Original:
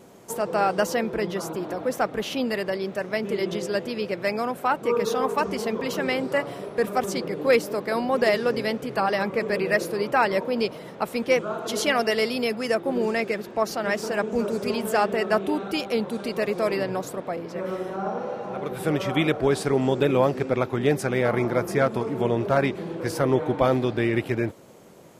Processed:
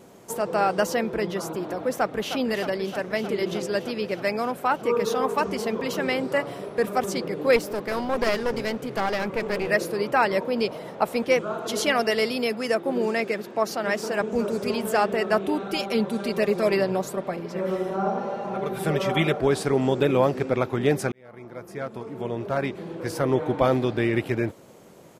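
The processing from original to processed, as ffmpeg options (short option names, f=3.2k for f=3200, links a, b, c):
-filter_complex "[0:a]asplit=2[a][b];[b]afade=t=in:st=1.94:d=0.01,afade=t=out:st=2.38:d=0.01,aecho=0:1:310|620|930|1240|1550|1860|2170|2480|2790|3100|3410|3720:0.316228|0.252982|0.202386|0.161909|0.129527|0.103622|0.0828972|0.0663178|0.0530542|0.0424434|0.0339547|0.0271638[c];[a][c]amix=inputs=2:normalize=0,asettb=1/sr,asplit=3[d][e][f];[d]atrim=end=7.564[g];[e]atrim=start=7.56:end=9.69,asetpts=PTS-STARTPTS,afade=t=in:d=0.004:c=qsin,afade=t=out:st=2.126:d=0.004:c=qsin,aeval=exprs='clip(val(0),-1,0.0335)':c=same[h];[f]atrim=start=9.686[i];[g][h]acrossfade=d=0.004:c1=hsin:c2=qsin[j];[j][i]acrossfade=d=0.004:c1=qsin:c2=hsin,asettb=1/sr,asplit=3[k][l][m];[k]atrim=end=10.674[n];[l]atrim=start=10.67:end=11.25,asetpts=PTS-STARTPTS,afade=t=in:d=0.004:c=qsin,afade=t=out:st=0.576:d=0.004:c=qsin,equalizer=f=710:w=1.2:g=5.5[o];[m]atrim=start=11.246[p];[n][o]acrossfade=d=0.004:c1=hsin:c2=qsin[q];[q][p]acrossfade=d=0.004:c1=qsin:c2=hsin,asettb=1/sr,asplit=3[r][s][t];[r]atrim=end=12.314[u];[s]atrim=start=12.31:end=14.21,asetpts=PTS-STARTPTS,afade=t=in:d=0.004:c=qsin,afade=t=out:st=1.896:d=0.004:c=qsin,highpass=140[v];[t]atrim=start=14.206[w];[u][v]acrossfade=d=0.004:c1=hsin:c2=qsin[x];[x][w]acrossfade=d=0.004:c1=qsin:c2=hsin,asettb=1/sr,asplit=3[y][z][aa];[y]atrim=end=15.714[ab];[z]atrim=start=15.71:end=19.39,asetpts=PTS-STARTPTS,afade=t=in:d=0.004:c=qsin,afade=t=out:st=3.676:d=0.004:c=qsin,aecho=1:1:5.1:0.65,atrim=end_sample=162288[ac];[aa]atrim=start=19.386[ad];[ab][ac]acrossfade=d=0.004:c1=hsin:c2=qsin[ae];[ae][ad]acrossfade=d=0.004:c1=qsin:c2=hsin,asplit=2[af][ag];[af]atrim=end=21.12,asetpts=PTS-STARTPTS,afade=t=out:st=21.116:d=0.004:c=hsin[ah];[ag]atrim=start=21.12,asetpts=PTS-STARTPTS,afade=t=in:d=2.5[ai];[ah][ai]concat=n=2:v=0:a=1"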